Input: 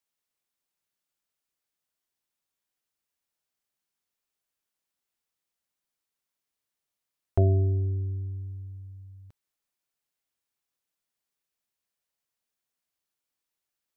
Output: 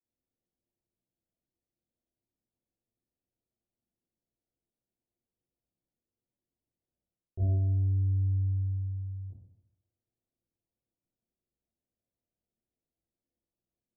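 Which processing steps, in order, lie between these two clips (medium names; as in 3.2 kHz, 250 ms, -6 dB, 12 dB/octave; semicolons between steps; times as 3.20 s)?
reverse; compression 10:1, threshold -35 dBFS, peak gain reduction 17.5 dB; reverse; Gaussian low-pass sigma 16 samples; reverberation RT60 0.80 s, pre-delay 18 ms, DRR -9 dB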